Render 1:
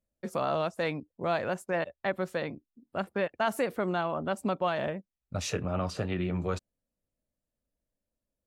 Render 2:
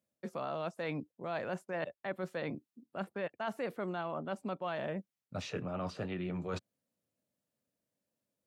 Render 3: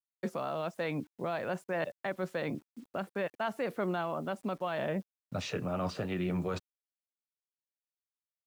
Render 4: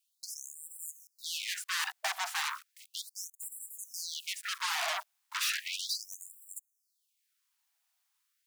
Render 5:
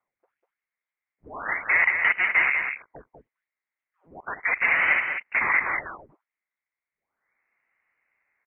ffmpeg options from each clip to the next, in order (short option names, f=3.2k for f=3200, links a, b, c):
-filter_complex "[0:a]acrossover=split=4600[a][b];[b]acompressor=threshold=-57dB:ratio=4:attack=1:release=60[c];[a][c]amix=inputs=2:normalize=0,highpass=f=110:w=0.5412,highpass=f=110:w=1.3066,areverse,acompressor=threshold=-38dB:ratio=4,areverse,volume=2dB"
-af "alimiter=level_in=9dB:limit=-24dB:level=0:latency=1:release=421,volume=-9dB,acrusher=bits=11:mix=0:aa=0.000001,volume=9dB"
-filter_complex "[0:a]asplit=2[a][b];[b]aeval=exprs='0.0668*sin(PI/2*7.94*val(0)/0.0668)':c=same,volume=-8dB[c];[a][c]amix=inputs=2:normalize=0,afftfilt=real='re*gte(b*sr/1024,610*pow(7400/610,0.5+0.5*sin(2*PI*0.35*pts/sr)))':imag='im*gte(b*sr/1024,610*pow(7400/610,0.5+0.5*sin(2*PI*0.35*pts/sr)))':win_size=1024:overlap=0.75,volume=2dB"
-filter_complex "[0:a]highpass=f=1.6k:t=q:w=6.3,asplit=2[a][b];[b]aecho=0:1:196:0.501[c];[a][c]amix=inputs=2:normalize=0,lowpass=f=3.1k:t=q:w=0.5098,lowpass=f=3.1k:t=q:w=0.6013,lowpass=f=3.1k:t=q:w=0.9,lowpass=f=3.1k:t=q:w=2.563,afreqshift=-3700,volume=4.5dB"